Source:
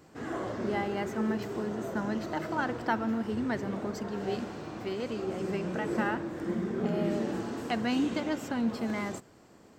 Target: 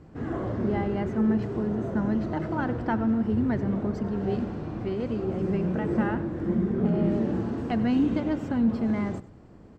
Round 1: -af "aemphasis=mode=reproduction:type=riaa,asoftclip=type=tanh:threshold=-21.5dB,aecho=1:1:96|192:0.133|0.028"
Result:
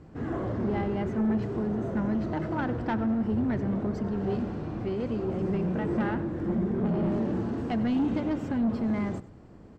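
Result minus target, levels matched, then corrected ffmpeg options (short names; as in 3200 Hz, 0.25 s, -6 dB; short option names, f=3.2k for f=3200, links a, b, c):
soft clip: distortion +14 dB
-af "aemphasis=mode=reproduction:type=riaa,asoftclip=type=tanh:threshold=-12dB,aecho=1:1:96|192:0.133|0.028"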